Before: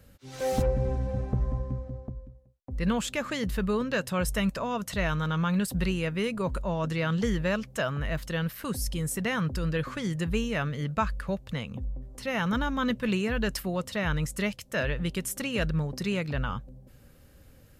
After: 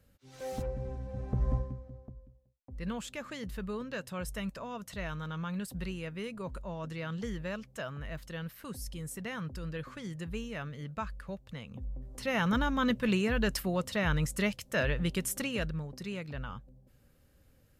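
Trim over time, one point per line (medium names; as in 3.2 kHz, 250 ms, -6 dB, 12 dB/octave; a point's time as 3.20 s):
1.09 s -10.5 dB
1.54 s +1 dB
1.77 s -10 dB
11.60 s -10 dB
12.14 s -1 dB
15.38 s -1 dB
15.81 s -9.5 dB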